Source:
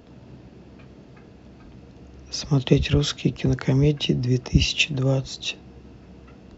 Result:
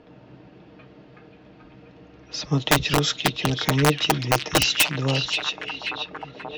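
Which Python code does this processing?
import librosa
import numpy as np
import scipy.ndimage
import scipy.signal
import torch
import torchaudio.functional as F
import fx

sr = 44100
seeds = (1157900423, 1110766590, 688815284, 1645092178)

y = fx.env_lowpass(x, sr, base_hz=2900.0, full_db=-17.0)
y = (np.mod(10.0 ** (11.0 / 20.0) * y + 1.0, 2.0) - 1.0) / 10.0 ** (11.0 / 20.0)
y = fx.low_shelf(y, sr, hz=230.0, db=-10.0)
y = y + 0.43 * np.pad(y, (int(6.5 * sr / 1000.0), 0))[:len(y)]
y = fx.echo_stepped(y, sr, ms=532, hz=3400.0, octaves=-0.7, feedback_pct=70, wet_db=-4.0)
y = y * librosa.db_to_amplitude(2.0)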